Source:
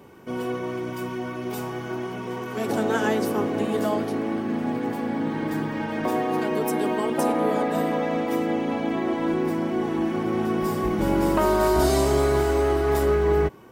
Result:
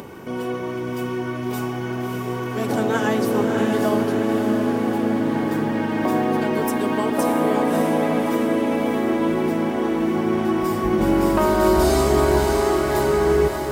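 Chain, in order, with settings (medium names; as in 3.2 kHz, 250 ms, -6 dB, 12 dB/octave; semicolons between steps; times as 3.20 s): upward compressor, threshold -31 dBFS; echo that smears into a reverb 615 ms, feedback 59%, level -4.5 dB; trim +2 dB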